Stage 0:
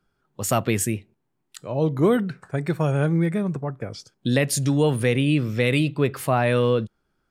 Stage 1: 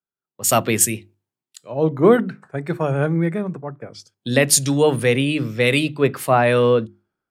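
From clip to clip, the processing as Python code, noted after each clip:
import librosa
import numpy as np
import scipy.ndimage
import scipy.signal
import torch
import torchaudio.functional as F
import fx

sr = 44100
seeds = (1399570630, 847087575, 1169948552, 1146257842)

y = fx.highpass(x, sr, hz=170.0, slope=6)
y = fx.hum_notches(y, sr, base_hz=50, count=7)
y = fx.band_widen(y, sr, depth_pct=70)
y = y * 10.0 ** (5.0 / 20.0)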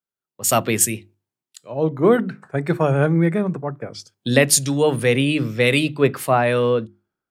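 y = fx.rider(x, sr, range_db=4, speed_s=0.5)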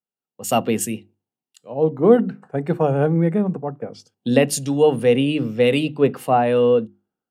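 y = fx.small_body(x, sr, hz=(230.0, 470.0, 740.0, 2800.0), ring_ms=20, db=12)
y = y * 10.0 ** (-9.0 / 20.0)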